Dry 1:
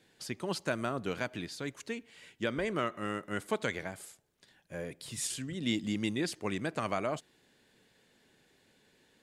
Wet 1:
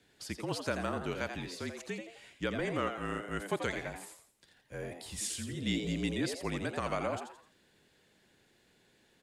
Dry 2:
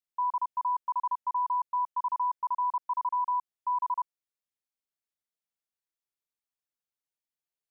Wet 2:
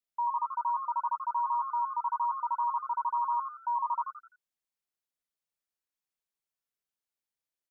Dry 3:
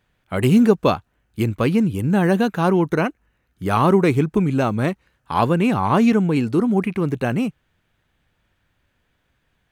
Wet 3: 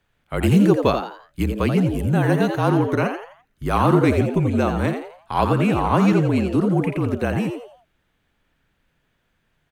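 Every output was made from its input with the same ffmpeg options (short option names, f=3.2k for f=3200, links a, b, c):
-filter_complex "[0:a]afreqshift=-38,asplit=5[a][b][c][d][e];[b]adelay=85,afreqshift=130,volume=-7.5dB[f];[c]adelay=170,afreqshift=260,volume=-16.1dB[g];[d]adelay=255,afreqshift=390,volume=-24.8dB[h];[e]adelay=340,afreqshift=520,volume=-33.4dB[i];[a][f][g][h][i]amix=inputs=5:normalize=0,volume=-1.5dB"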